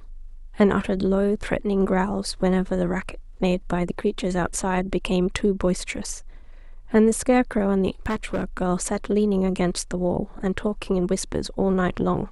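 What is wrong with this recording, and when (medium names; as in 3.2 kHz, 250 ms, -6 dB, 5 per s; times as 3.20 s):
8.06–8.62 s: clipped -20.5 dBFS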